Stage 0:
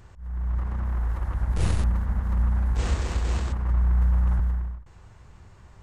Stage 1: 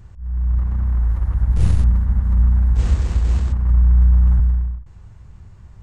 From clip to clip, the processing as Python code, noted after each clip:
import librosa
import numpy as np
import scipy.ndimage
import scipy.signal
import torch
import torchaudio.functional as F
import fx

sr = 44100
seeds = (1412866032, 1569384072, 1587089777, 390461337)

y = fx.bass_treble(x, sr, bass_db=11, treble_db=1)
y = y * 10.0 ** (-2.5 / 20.0)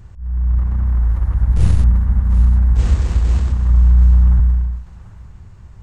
y = fx.echo_thinned(x, sr, ms=740, feedback_pct=28, hz=550.0, wet_db=-13.0)
y = y * 10.0 ** (2.5 / 20.0)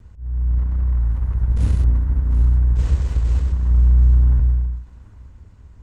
y = fx.lower_of_two(x, sr, delay_ms=2.0)
y = fx.peak_eq(y, sr, hz=66.0, db=5.0, octaves=0.76)
y = y * 10.0 ** (-6.5 / 20.0)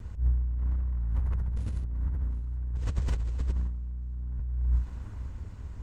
y = fx.over_compress(x, sr, threshold_db=-25.0, ratio=-1.0)
y = y * 10.0 ** (-4.5 / 20.0)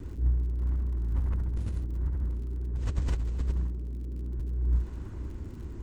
y = fx.dmg_crackle(x, sr, seeds[0], per_s=45.0, level_db=-46.0)
y = fx.dmg_noise_band(y, sr, seeds[1], low_hz=130.0, high_hz=380.0, level_db=-48.0)